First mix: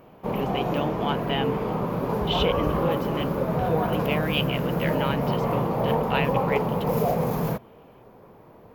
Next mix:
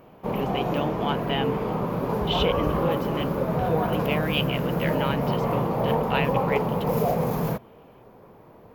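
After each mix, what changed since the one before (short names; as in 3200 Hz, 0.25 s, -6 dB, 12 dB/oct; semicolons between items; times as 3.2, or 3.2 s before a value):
none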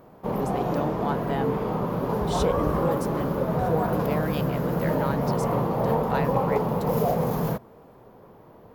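speech: remove synth low-pass 3000 Hz, resonance Q 6.8; master: add bell 2400 Hz -5 dB 0.39 oct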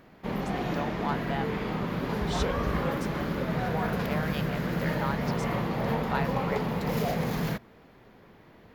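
speech: add BPF 730–6300 Hz; background: add ten-band EQ 125 Hz -4 dB, 500 Hz -7 dB, 1000 Hz -7 dB, 2000 Hz +9 dB, 4000 Hz +6 dB, 8000 Hz +3 dB, 16000 Hz -9 dB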